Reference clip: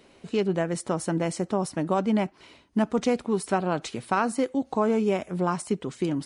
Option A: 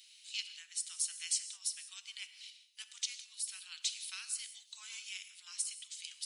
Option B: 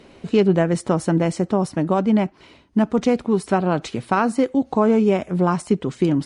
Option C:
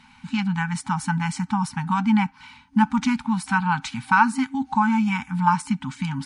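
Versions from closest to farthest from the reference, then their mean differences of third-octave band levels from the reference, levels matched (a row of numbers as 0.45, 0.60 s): B, C, A; 2.5, 7.5, 20.5 dB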